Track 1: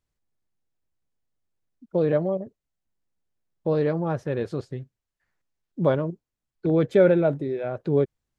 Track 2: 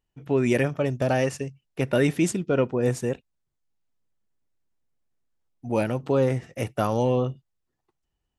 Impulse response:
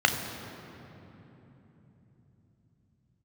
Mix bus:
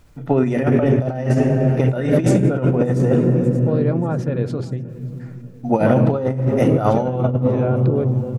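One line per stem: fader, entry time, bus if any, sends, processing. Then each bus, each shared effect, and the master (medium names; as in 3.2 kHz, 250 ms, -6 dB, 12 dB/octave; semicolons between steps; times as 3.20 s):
-8.5 dB, 0.00 s, no send, echo send -23 dB, band-stop 390 Hz, Q 12; small resonant body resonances 1.4/2.4 kHz, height 8 dB; level flattener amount 50%
+2.5 dB, 0.00 s, send -13 dB, echo send -17.5 dB, none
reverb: on, RT60 3.5 s, pre-delay 3 ms
echo: feedback delay 584 ms, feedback 43%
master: tilt shelf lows +4 dB, about 1.4 kHz; compressor with a negative ratio -15 dBFS, ratio -0.5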